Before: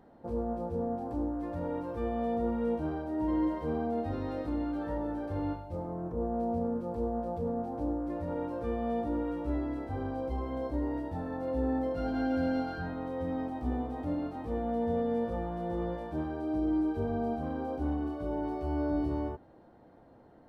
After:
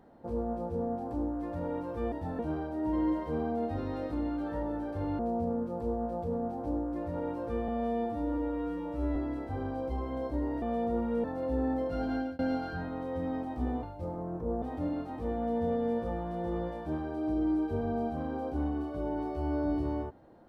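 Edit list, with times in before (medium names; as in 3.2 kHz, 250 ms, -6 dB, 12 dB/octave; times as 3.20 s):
2.12–2.74 s: swap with 11.02–11.29 s
5.54–6.33 s: move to 13.88 s
8.82–9.56 s: stretch 2×
12.10–12.44 s: fade out equal-power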